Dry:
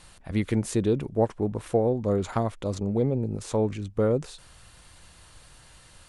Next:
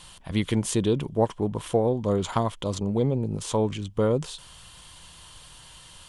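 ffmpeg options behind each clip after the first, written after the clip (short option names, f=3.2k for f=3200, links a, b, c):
-filter_complex "[0:a]equalizer=f=160:t=o:w=0.33:g=5,equalizer=f=1k:t=o:w=0.33:g=8,equalizer=f=3.15k:t=o:w=0.33:g=11,acrossover=split=3800[a][b];[b]acontrast=37[c];[a][c]amix=inputs=2:normalize=0"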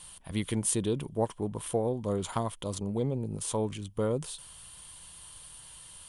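-af "equalizer=f=9.6k:t=o:w=0.4:g=14,volume=-6.5dB"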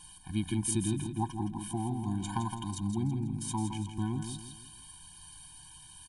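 -filter_complex "[0:a]asplit=2[a][b];[b]aecho=0:1:164|328|492|656:0.422|0.164|0.0641|0.025[c];[a][c]amix=inputs=2:normalize=0,afftfilt=real='re*eq(mod(floor(b*sr/1024/360),2),0)':imag='im*eq(mod(floor(b*sr/1024/360),2),0)':win_size=1024:overlap=0.75"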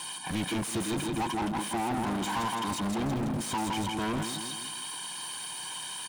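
-filter_complex "[0:a]asplit=2[a][b];[b]highpass=f=720:p=1,volume=36dB,asoftclip=type=tanh:threshold=-18dB[c];[a][c]amix=inputs=2:normalize=0,lowpass=f=3.4k:p=1,volume=-6dB,acrossover=split=120|3200[d][e][f];[d]acrusher=bits=5:mix=0:aa=0.000001[g];[g][e][f]amix=inputs=3:normalize=0,volume=-5dB"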